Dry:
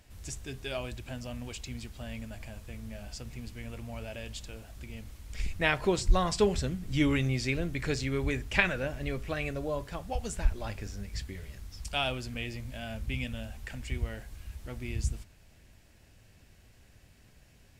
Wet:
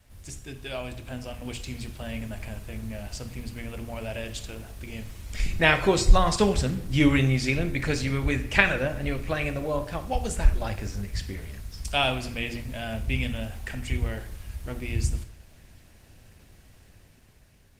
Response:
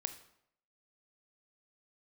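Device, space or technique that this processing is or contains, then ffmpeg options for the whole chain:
speakerphone in a meeting room: -filter_complex "[0:a]bandreject=f=60:t=h:w=6,bandreject=f=120:t=h:w=6,bandreject=f=180:t=h:w=6,bandreject=f=240:t=h:w=6,bandreject=f=300:t=h:w=6,bandreject=f=360:t=h:w=6,bandreject=f=420:t=h:w=6,adynamicequalizer=threshold=0.00398:dfrequency=380:dqfactor=2.8:tfrequency=380:tqfactor=2.8:attack=5:release=100:ratio=0.375:range=2.5:mode=cutabove:tftype=bell[a];[1:a]atrim=start_sample=2205[b];[a][b]afir=irnorm=-1:irlink=0,dynaudnorm=f=510:g=5:m=6dB,volume=2.5dB" -ar 48000 -c:a libopus -b:a 24k

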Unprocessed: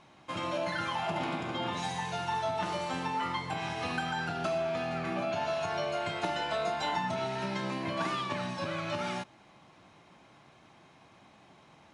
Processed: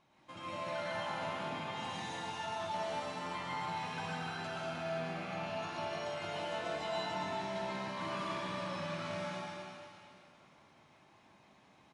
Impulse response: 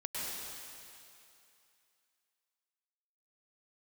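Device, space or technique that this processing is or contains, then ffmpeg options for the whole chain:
cave: -filter_complex "[0:a]aecho=1:1:227:0.335[a];[1:a]atrim=start_sample=2205[b];[a][b]afir=irnorm=-1:irlink=0,volume=-9dB"

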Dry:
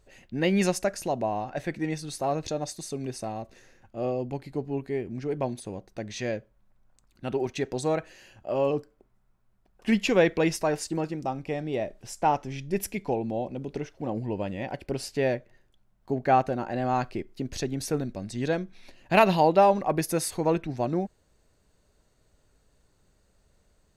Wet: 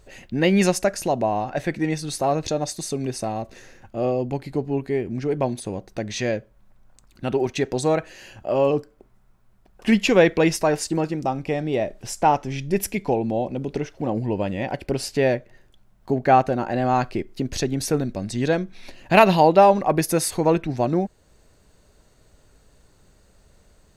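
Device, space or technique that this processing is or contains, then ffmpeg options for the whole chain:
parallel compression: -filter_complex "[0:a]asplit=2[a][b];[b]acompressor=threshold=-40dB:ratio=6,volume=-3dB[c];[a][c]amix=inputs=2:normalize=0,volume=5dB"

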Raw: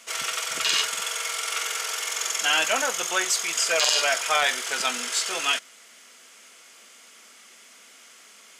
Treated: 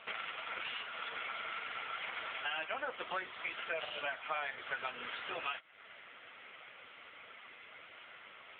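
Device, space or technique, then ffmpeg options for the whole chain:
voicemail: -af "highpass=300,lowpass=2.8k,acompressor=threshold=-40dB:ratio=8,volume=6dB" -ar 8000 -c:a libopencore_amrnb -b:a 5900

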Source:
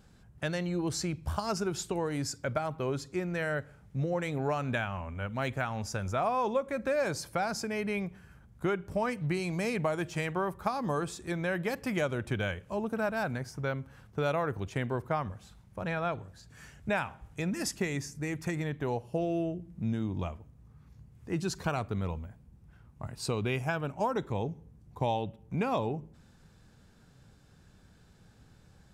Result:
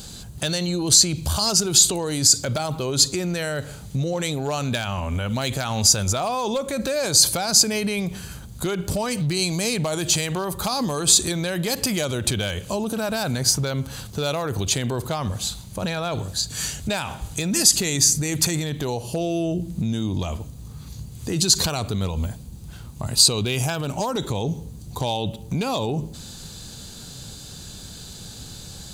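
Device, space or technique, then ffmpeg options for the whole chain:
loud club master: -af "acompressor=threshold=-35dB:ratio=1.5,asoftclip=type=hard:threshold=-25.5dB,alimiter=level_in=34dB:limit=-1dB:release=50:level=0:latency=1,highshelf=f=2.9k:t=q:w=1.5:g=13.5,bandreject=f=5.4k:w=6.4,volume=-16.5dB"

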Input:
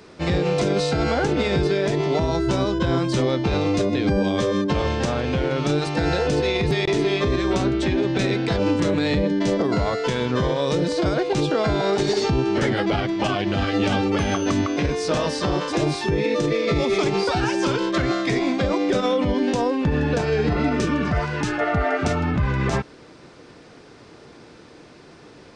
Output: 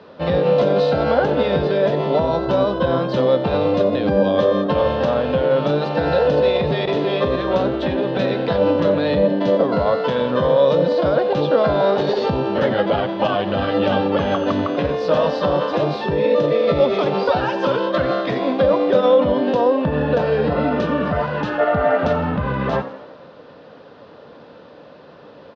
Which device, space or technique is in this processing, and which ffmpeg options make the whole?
frequency-shifting delay pedal into a guitar cabinet: -filter_complex "[0:a]asplit=7[a][b][c][d][e][f][g];[b]adelay=88,afreqshift=65,volume=-14.5dB[h];[c]adelay=176,afreqshift=130,volume=-19.5dB[i];[d]adelay=264,afreqshift=195,volume=-24.6dB[j];[e]adelay=352,afreqshift=260,volume=-29.6dB[k];[f]adelay=440,afreqshift=325,volume=-34.6dB[l];[g]adelay=528,afreqshift=390,volume=-39.7dB[m];[a][h][i][j][k][l][m]amix=inputs=7:normalize=0,highpass=100,equalizer=f=120:t=q:w=4:g=-6,equalizer=f=350:t=q:w=4:g=-8,equalizer=f=550:t=q:w=4:g=10,equalizer=f=1k:t=q:w=4:g=3,equalizer=f=2.2k:t=q:w=4:g=-10,lowpass=f=3.7k:w=0.5412,lowpass=f=3.7k:w=1.3066,volume=2.5dB"

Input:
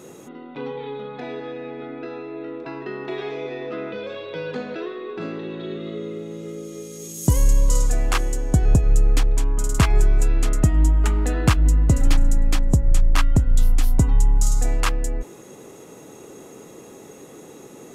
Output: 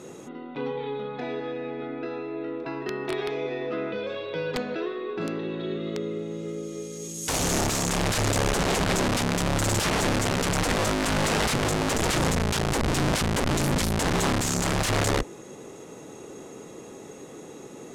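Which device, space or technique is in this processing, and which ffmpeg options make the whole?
overflowing digital effects unit: -af "aeval=exprs='(mod(9.44*val(0)+1,2)-1)/9.44':c=same,lowpass=9k"

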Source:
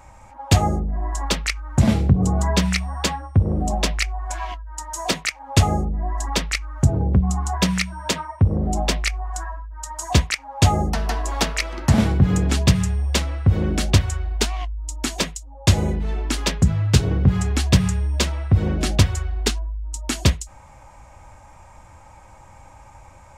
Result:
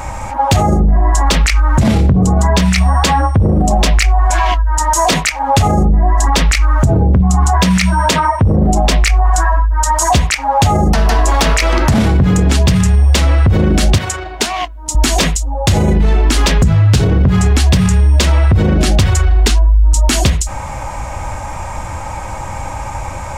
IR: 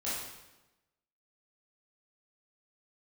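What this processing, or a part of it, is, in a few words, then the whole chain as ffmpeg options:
loud club master: -filter_complex "[0:a]acompressor=threshold=-20dB:ratio=2.5,asoftclip=type=hard:threshold=-13.5dB,alimiter=level_in=25.5dB:limit=-1dB:release=50:level=0:latency=1,asettb=1/sr,asplit=3[a][b][c];[a]atrim=end=13.984[d];[b]atrim=start=13.98:end=14.95,asetpts=PTS-STARTPTS,afade=t=in:d=0.004:c=qsin,afade=t=out:st=0.966:d=0.004:c=qsin,highpass=190[e];[c]atrim=start=14.946[f];[d][e]acrossfade=d=0.004:c1=hsin:c2=qsin[g];[g][f]acrossfade=d=0.004:c1=qsin:c2=hsin,volume=-3dB"

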